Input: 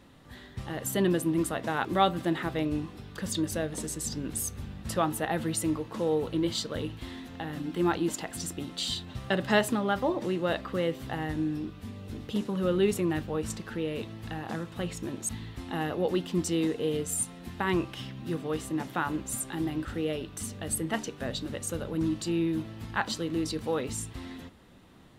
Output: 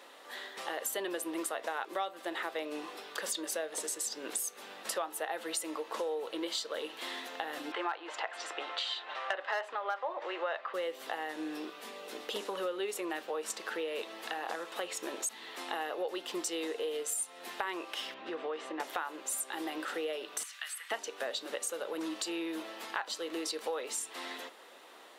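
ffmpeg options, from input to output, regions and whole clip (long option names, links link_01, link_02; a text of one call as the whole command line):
ffmpeg -i in.wav -filter_complex "[0:a]asettb=1/sr,asplit=3[link_01][link_02][link_03];[link_01]atrim=end=7.724[link_04];[link_02]atrim=start=7.72:end=10.74,asetpts=PTS-STARTPTS,afade=type=in:duration=0.004:curve=qsin,afade=type=out:start_time=3.016:duration=0.004:curve=qsin,acontrast=74,highpass=710,lowpass=2200,asoftclip=type=hard:threshold=-14dB[link_05];[link_03]atrim=start=10.736[link_06];[link_04][link_05]acrossfade=duration=0.004:curve1=hsin:curve2=qsin[link_07];[link_07][link_06]acrossfade=duration=0.004:curve1=qsin:curve2=hsin,asettb=1/sr,asplit=3[link_08][link_09][link_10];[link_08]atrim=end=18.144[link_11];[link_09]atrim=start=18.14:end=18.8,asetpts=PTS-STARTPTS,afade=type=in:duration=0.004:curve=qsin,afade=type=out:start_time=0.656:duration=0.004:curve=qsin,lowpass=2900,acompressor=threshold=-32dB:ratio=2.5:attack=3.2:release=140:knee=1:detection=peak[link_12];[link_10]atrim=start=18.796[link_13];[link_11][link_12]acrossfade=duration=0.004:curve1=hsin:curve2=qsin[link_14];[link_14][link_13]acrossfade=duration=0.004:curve1=qsin:curve2=hsin,asettb=1/sr,asplit=3[link_15][link_16][link_17];[link_15]atrim=end=20.434[link_18];[link_16]atrim=start=20.43:end=20.91,asetpts=PTS-STARTPTS,afade=type=in:duration=0.004:curve=qsin,afade=type=out:start_time=0.476:duration=0.004:curve=qsin,highpass=frequency=1400:width=0.5412,highpass=frequency=1400:width=1.3066,acrossover=split=3000[link_19][link_20];[link_20]acompressor=threshold=-49dB:ratio=4:attack=1:release=60[link_21];[link_19][link_21]amix=inputs=2:normalize=0[link_22];[link_17]atrim=start=20.906[link_23];[link_18][link_22]acrossfade=duration=0.004:curve1=hsin:curve2=qsin[link_24];[link_24][link_23]acrossfade=duration=0.004:curve1=qsin:curve2=hsin,acontrast=86,highpass=frequency=450:width=0.5412,highpass=frequency=450:width=1.3066,acompressor=threshold=-34dB:ratio=5" out.wav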